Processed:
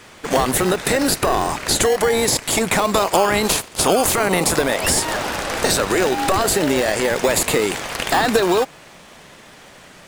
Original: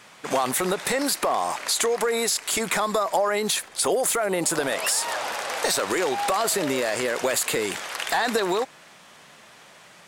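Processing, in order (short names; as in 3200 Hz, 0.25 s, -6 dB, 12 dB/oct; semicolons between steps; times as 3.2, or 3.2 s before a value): 2.92–4.57 spectral limiter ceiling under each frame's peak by 13 dB; in parallel at -5 dB: decimation with a swept rate 31×, swing 60% 0.21 Hz; on the sum: gain +4.5 dB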